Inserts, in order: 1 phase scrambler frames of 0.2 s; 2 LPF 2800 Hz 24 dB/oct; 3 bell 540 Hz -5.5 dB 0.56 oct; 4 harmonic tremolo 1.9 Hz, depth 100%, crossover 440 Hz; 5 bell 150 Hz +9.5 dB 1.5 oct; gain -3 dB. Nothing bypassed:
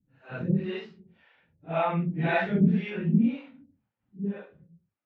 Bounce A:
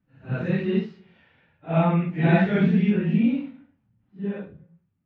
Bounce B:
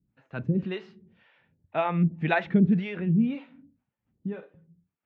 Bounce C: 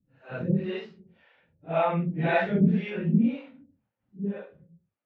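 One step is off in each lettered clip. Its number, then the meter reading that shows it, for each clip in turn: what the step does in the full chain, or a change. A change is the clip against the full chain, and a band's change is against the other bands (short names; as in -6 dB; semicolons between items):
4, 1 kHz band -2.5 dB; 1, momentary loudness spread change +2 LU; 3, 500 Hz band +2.5 dB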